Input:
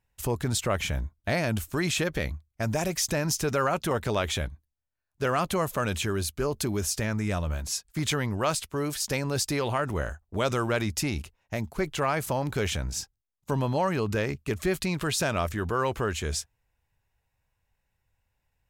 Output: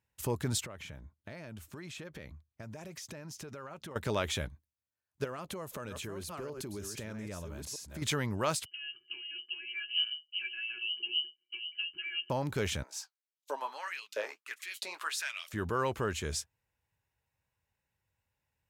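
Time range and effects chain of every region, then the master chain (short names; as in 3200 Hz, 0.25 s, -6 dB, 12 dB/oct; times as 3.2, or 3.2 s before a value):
0.65–3.96 HPF 56 Hz + high shelf 5700 Hz -7.5 dB + compressor 8:1, threshold -37 dBFS
5.24–8.02 reverse delay 0.63 s, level -8 dB + bell 450 Hz +3.5 dB 1.5 oct + compressor, threshold -33 dBFS
8.65–12.3 tilt -2 dB/oct + octave resonator E, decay 0.12 s + inverted band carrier 3000 Hz
12.83–15.53 HPF 240 Hz 24 dB/oct + LFO high-pass saw up 1.5 Hz 590–3900 Hz + flange 1.7 Hz, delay 3.1 ms, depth 9.8 ms, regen -42%
whole clip: HPF 78 Hz; notch 720 Hz, Q 12; gain -4.5 dB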